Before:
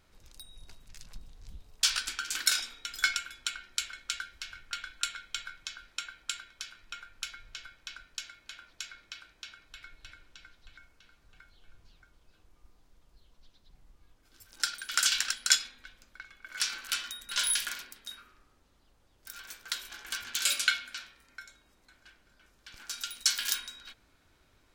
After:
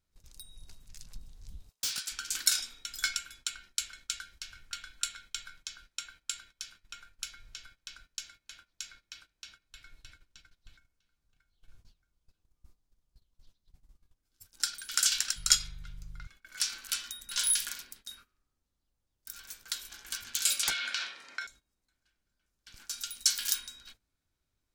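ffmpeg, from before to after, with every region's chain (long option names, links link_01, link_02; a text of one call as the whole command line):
ffmpeg -i in.wav -filter_complex "[0:a]asettb=1/sr,asplit=3[link_01][link_02][link_03];[link_01]atrim=end=1.694[link_04];[link_02]atrim=start=1.69:end=2.12,asetpts=PTS-STARTPTS,afade=type=in:duration=0.004:curve=qsin,afade=type=out:start_time=0.426:duration=0.004:curve=qsin,highpass=frequency=1100:poles=1,asoftclip=type=hard:threshold=-29dB[link_05];[link_03]atrim=start=2.116[link_06];[link_04][link_05]acrossfade=duration=0.004:curve1=hsin:curve2=qsin[link_07];[link_07][link_06]acrossfade=duration=0.004:curve1=qsin:curve2=hsin,asettb=1/sr,asplit=3[link_08][link_09][link_10];[link_08]atrim=end=15.364[link_11];[link_09]atrim=start=15.36:end=16.27,asetpts=PTS-STARTPTS,afade=type=in:duration=0.004:curve=qsin,afade=type=out:start_time=0.906:duration=0.004:curve=qsin,aeval=exprs='val(0)+0.00794*(sin(2*PI*50*n/s)+sin(2*PI*2*50*n/s)/2+sin(2*PI*3*50*n/s)/3+sin(2*PI*4*50*n/s)/4+sin(2*PI*5*50*n/s)/5)':channel_layout=same,afreqshift=-88[link_12];[link_10]atrim=start=16.266[link_13];[link_11][link_12]acrossfade=duration=0.004:curve1=hsin:curve2=qsin[link_14];[link_14][link_13]acrossfade=duration=0.004:curve1=qsin:curve2=hsin,asettb=1/sr,asplit=3[link_15][link_16][link_17];[link_15]atrim=end=20.634[link_18];[link_16]atrim=start=20.63:end=21.47,asetpts=PTS-STARTPTS,afade=type=in:duration=0.004:curve=qsin,afade=type=out:start_time=0.836:duration=0.004:curve=qsin,highpass=490,lowpass=4300,aeval=exprs='0.316*sin(PI/2*5.01*val(0)/0.316)':channel_layout=same,acompressor=threshold=-24dB:ratio=16:attack=3.2:release=140:knee=1:detection=peak[link_19];[link_17]atrim=start=21.466[link_20];[link_18][link_19]acrossfade=duration=0.004:curve1=hsin:curve2=qsin[link_21];[link_21][link_20]acrossfade=duration=0.004:curve1=qsin:curve2=hsin,bass=frequency=250:gain=7,treble=frequency=4000:gain=9,agate=range=-15dB:threshold=-48dB:ratio=16:detection=peak,volume=-6.5dB" out.wav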